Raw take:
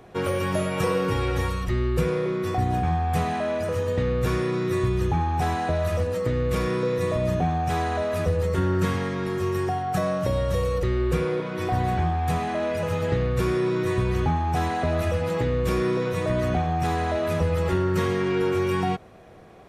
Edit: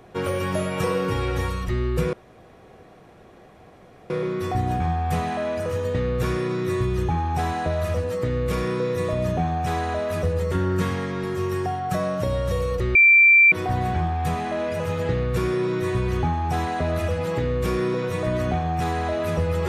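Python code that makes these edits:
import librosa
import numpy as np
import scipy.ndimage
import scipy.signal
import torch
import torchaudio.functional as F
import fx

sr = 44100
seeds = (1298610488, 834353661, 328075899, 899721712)

y = fx.edit(x, sr, fx.insert_room_tone(at_s=2.13, length_s=1.97),
    fx.bleep(start_s=10.98, length_s=0.57, hz=2350.0, db=-10.0), tone=tone)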